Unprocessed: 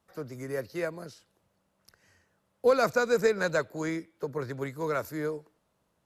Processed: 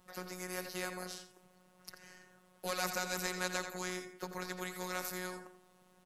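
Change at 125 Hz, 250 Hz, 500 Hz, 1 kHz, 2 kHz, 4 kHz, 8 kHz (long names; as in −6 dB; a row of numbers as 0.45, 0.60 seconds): −9.5, −9.5, −15.5, −7.0, −6.0, +1.5, +4.0 decibels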